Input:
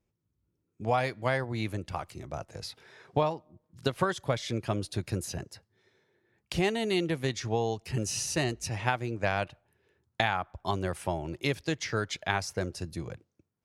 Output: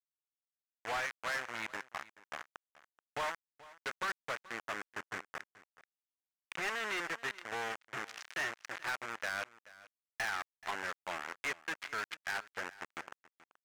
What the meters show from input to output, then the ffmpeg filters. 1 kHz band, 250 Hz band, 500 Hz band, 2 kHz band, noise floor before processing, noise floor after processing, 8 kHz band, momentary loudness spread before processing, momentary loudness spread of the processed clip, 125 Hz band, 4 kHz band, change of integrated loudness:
-7.0 dB, -19.0 dB, -14.5 dB, -1.5 dB, -81 dBFS, under -85 dBFS, -11.0 dB, 12 LU, 12 LU, -27.0 dB, -8.0 dB, -8.0 dB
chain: -af "adynamicsmooth=sensitivity=7:basefreq=1700,acrusher=bits=4:mix=0:aa=0.000001,bandpass=f=1700:t=q:w=1.6:csg=0,volume=47.3,asoftclip=hard,volume=0.0211,aecho=1:1:430:0.106,volume=1.26"

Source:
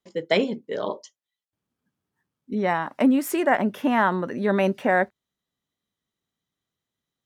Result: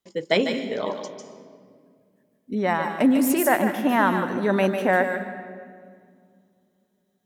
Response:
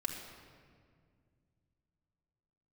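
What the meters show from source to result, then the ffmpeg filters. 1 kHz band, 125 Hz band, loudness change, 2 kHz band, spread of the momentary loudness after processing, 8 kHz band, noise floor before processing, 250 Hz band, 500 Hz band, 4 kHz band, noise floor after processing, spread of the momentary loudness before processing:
+1.0 dB, +0.5 dB, +1.0 dB, +1.5 dB, 15 LU, +6.5 dB, under -85 dBFS, +1.0 dB, +1.0 dB, +2.0 dB, -70 dBFS, 9 LU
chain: -filter_complex "[0:a]highshelf=f=6700:g=6,asplit=2[s0][s1];[1:a]atrim=start_sample=2205,highshelf=f=5700:g=10.5,adelay=148[s2];[s1][s2]afir=irnorm=-1:irlink=0,volume=0.355[s3];[s0][s3]amix=inputs=2:normalize=0"

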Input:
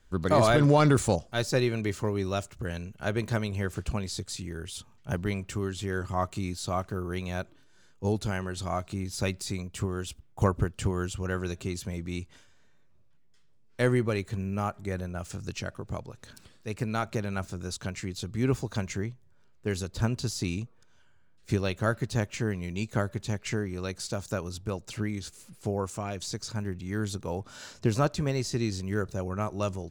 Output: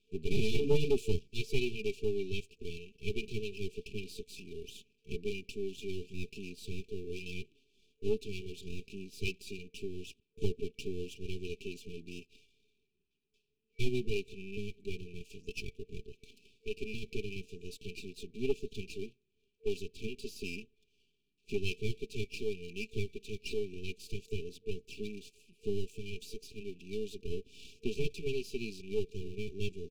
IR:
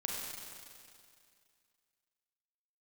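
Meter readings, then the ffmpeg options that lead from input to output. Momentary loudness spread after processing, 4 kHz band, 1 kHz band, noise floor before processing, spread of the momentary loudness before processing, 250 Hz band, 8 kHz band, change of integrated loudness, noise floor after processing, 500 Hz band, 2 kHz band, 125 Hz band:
12 LU, -5.5 dB, under -25 dB, -58 dBFS, 11 LU, -11.0 dB, -14.0 dB, -9.0 dB, -78 dBFS, -6.0 dB, -8.5 dB, -13.0 dB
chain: -filter_complex "[0:a]asplit=3[s0][s1][s2];[s0]bandpass=f=530:t=q:w=8,volume=1[s3];[s1]bandpass=f=1840:t=q:w=8,volume=0.501[s4];[s2]bandpass=f=2480:t=q:w=8,volume=0.355[s5];[s3][s4][s5]amix=inputs=3:normalize=0,aecho=1:1:4.6:0.64,aeval=exprs='max(val(0),0)':c=same,afftfilt=real='re*(1-between(b*sr/4096,450,2300))':imag='im*(1-between(b*sr/4096,450,2300))':win_size=4096:overlap=0.75,asoftclip=type=tanh:threshold=0.0398,volume=4.73"

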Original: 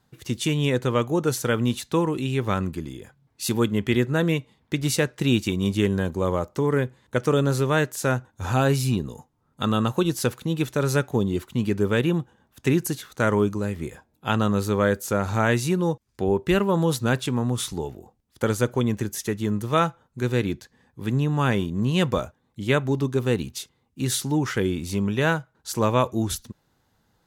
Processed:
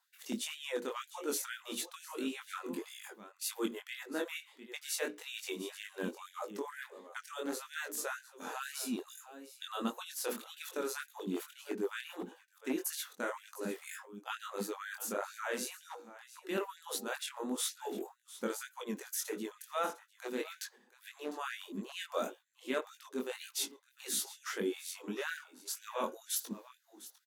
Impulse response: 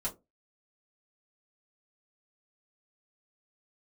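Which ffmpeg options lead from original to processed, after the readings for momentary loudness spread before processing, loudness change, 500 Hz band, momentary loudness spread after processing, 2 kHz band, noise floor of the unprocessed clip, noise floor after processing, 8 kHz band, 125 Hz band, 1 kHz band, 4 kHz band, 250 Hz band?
8 LU, -15.5 dB, -16.0 dB, 10 LU, -12.5 dB, -69 dBFS, -68 dBFS, -6.5 dB, -34.0 dB, -14.0 dB, -10.0 dB, -18.0 dB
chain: -af "highshelf=f=9700:g=9,areverse,acompressor=threshold=0.0158:ratio=5,areverse,equalizer=f=140:t=o:w=1.2:g=12,agate=range=0.355:threshold=0.00316:ratio=16:detection=peak,aecho=1:1:703:0.158,flanger=delay=18.5:depth=5.7:speed=1.7,asoftclip=type=hard:threshold=0.0631,bandreject=f=60:t=h:w=6,bandreject=f=120:t=h:w=6,bandreject=f=180:t=h:w=6,bandreject=f=240:t=h:w=6,bandreject=f=300:t=h:w=6,bandreject=f=360:t=h:w=6,bandreject=f=420:t=h:w=6,bandreject=f=480:t=h:w=6,bandreject=f=540:t=h:w=6,afftfilt=real='re*gte(b*sr/1024,200*pow(1500/200,0.5+0.5*sin(2*PI*2.1*pts/sr)))':imag='im*gte(b*sr/1024,200*pow(1500/200,0.5+0.5*sin(2*PI*2.1*pts/sr)))':win_size=1024:overlap=0.75,volume=1.88"

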